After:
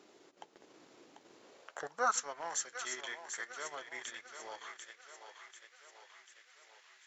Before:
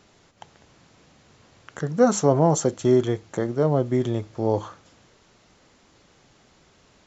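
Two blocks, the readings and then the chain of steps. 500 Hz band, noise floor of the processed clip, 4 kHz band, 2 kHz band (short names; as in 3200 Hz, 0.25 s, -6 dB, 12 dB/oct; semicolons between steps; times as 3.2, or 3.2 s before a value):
-24.5 dB, -66 dBFS, -5.0 dB, -1.0 dB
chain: split-band echo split 360 Hz, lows 0.154 s, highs 0.742 s, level -8 dB; flange 0.48 Hz, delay 0.8 ms, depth 7.5 ms, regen -81%; high-pass sweep 340 Hz -> 1800 Hz, 1.43–2.28; transient shaper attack -4 dB, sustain -8 dB; gain -1 dB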